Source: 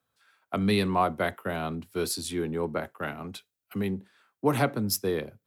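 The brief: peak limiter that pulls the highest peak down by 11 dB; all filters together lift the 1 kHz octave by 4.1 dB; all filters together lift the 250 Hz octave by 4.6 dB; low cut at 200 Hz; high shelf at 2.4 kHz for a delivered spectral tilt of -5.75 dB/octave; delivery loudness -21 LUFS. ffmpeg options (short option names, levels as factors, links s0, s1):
-af "highpass=200,equalizer=f=250:t=o:g=8.5,equalizer=f=1000:t=o:g=6,highshelf=f=2400:g=-5.5,volume=2.66,alimiter=limit=0.335:level=0:latency=1"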